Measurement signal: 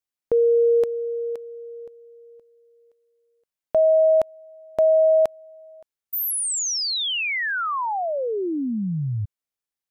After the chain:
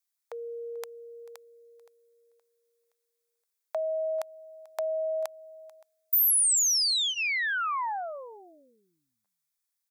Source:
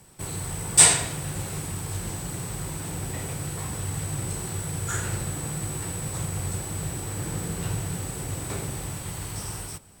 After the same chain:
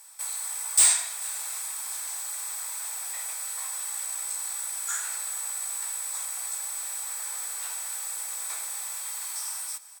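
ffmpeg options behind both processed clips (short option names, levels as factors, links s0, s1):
-filter_complex "[0:a]highpass=f=820:w=0.5412,highpass=f=820:w=1.3066,highshelf=f=4200:g=9.5,bandreject=f=2900:w=7,asplit=2[s0][s1];[s1]acompressor=threshold=0.02:ratio=6:attack=47:release=436:detection=peak,volume=1.12[s2];[s0][s2]amix=inputs=2:normalize=0,volume=2.11,asoftclip=hard,volume=0.473,aecho=1:1:440:0.0891,volume=0.422"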